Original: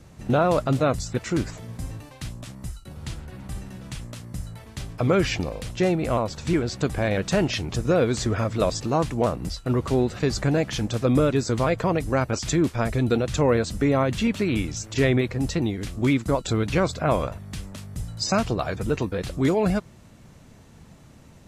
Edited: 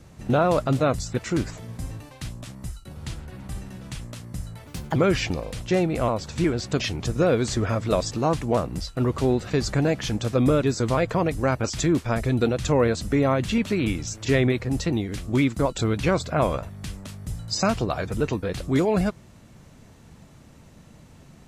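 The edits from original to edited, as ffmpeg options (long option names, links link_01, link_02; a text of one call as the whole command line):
ffmpeg -i in.wav -filter_complex "[0:a]asplit=4[link_01][link_02][link_03][link_04];[link_01]atrim=end=4.674[link_05];[link_02]atrim=start=4.67:end=5.05,asetpts=PTS-STARTPTS,asetrate=58212,aresample=44100,atrim=end_sample=12695,asetpts=PTS-STARTPTS[link_06];[link_03]atrim=start=5.046:end=6.892[link_07];[link_04]atrim=start=7.488[link_08];[link_05][link_06]acrossfade=duration=0.004:curve1=hsin:curve2=hsin[link_09];[link_09][link_07]acrossfade=duration=0.004:curve1=hsin:curve2=hsin[link_10];[link_10][link_08]acrossfade=duration=0.004:curve1=hsin:curve2=hsin" out.wav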